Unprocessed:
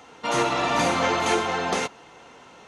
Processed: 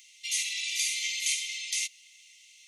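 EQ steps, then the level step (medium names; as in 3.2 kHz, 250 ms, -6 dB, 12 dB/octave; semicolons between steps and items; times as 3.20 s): brick-wall FIR high-pass 1.9 kHz; differentiator; +6.0 dB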